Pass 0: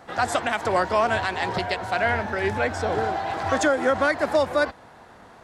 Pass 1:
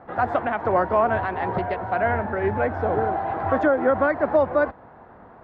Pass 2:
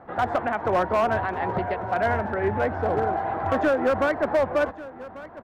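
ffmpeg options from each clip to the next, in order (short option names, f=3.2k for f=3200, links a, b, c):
-af "lowpass=1.4k,aemphasis=mode=reproduction:type=50fm,volume=2dB"
-af "asoftclip=type=hard:threshold=-15.5dB,aecho=1:1:1143:0.133,volume=-1dB"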